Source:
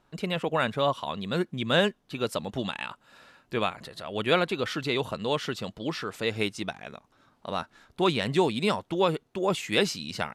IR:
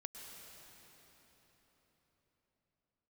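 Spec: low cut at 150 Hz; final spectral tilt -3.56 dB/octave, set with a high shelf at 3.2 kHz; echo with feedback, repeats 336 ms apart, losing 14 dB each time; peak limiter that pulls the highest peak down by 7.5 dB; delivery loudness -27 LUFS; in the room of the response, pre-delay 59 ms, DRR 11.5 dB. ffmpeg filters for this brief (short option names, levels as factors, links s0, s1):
-filter_complex "[0:a]highpass=150,highshelf=f=3200:g=-4.5,alimiter=limit=0.133:level=0:latency=1,aecho=1:1:336|672:0.2|0.0399,asplit=2[s0][s1];[1:a]atrim=start_sample=2205,adelay=59[s2];[s1][s2]afir=irnorm=-1:irlink=0,volume=0.398[s3];[s0][s3]amix=inputs=2:normalize=0,volume=1.68"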